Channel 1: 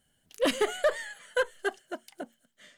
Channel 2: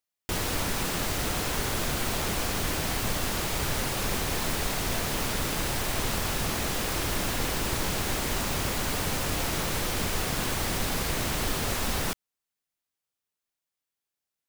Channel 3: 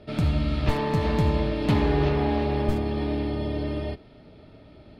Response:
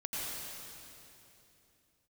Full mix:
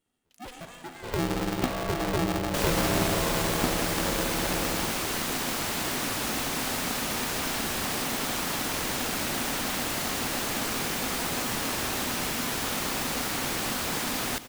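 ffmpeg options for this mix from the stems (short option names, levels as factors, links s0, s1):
-filter_complex "[0:a]alimiter=limit=0.0708:level=0:latency=1:release=51,lowshelf=f=150:g=5.5,volume=0.224,asplit=2[s0][s1];[s1]volume=0.447[s2];[1:a]acrossover=split=430[s3][s4];[s3]acompressor=threshold=0.02:ratio=6[s5];[s5][s4]amix=inputs=2:normalize=0,adelay=2250,volume=0.944,asplit=2[s6][s7];[s7]volume=0.158[s8];[2:a]adelay=950,volume=0.473,asplit=2[s9][s10];[s10]volume=0.178[s11];[3:a]atrim=start_sample=2205[s12];[s2][s8][s11]amix=inputs=3:normalize=0[s13];[s13][s12]afir=irnorm=-1:irlink=0[s14];[s0][s6][s9][s14]amix=inputs=4:normalize=0,aeval=exprs='val(0)*sgn(sin(2*PI*250*n/s))':c=same"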